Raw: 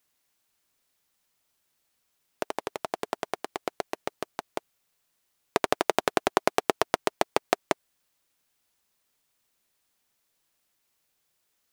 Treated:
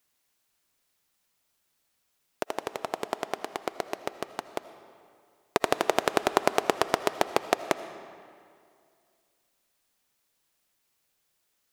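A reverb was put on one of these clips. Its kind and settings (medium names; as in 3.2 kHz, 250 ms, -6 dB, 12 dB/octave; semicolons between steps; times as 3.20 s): algorithmic reverb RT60 2.3 s, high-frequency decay 0.75×, pre-delay 40 ms, DRR 12 dB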